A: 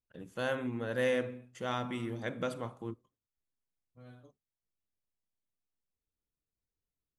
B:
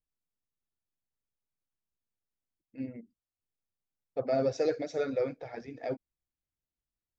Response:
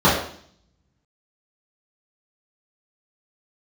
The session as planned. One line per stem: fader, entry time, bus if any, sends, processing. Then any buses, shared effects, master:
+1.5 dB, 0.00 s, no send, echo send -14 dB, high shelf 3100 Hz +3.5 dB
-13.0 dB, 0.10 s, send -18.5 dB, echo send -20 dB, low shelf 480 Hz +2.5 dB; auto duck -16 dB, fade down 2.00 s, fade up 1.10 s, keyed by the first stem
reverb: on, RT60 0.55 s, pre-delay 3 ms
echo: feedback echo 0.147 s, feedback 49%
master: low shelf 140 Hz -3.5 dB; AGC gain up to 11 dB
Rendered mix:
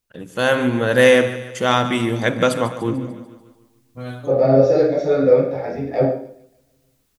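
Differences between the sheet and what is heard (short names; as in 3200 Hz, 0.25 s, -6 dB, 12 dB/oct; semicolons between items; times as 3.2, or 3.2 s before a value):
stem A +1.5 dB -> +13.0 dB; stem B -13.0 dB -> -2.0 dB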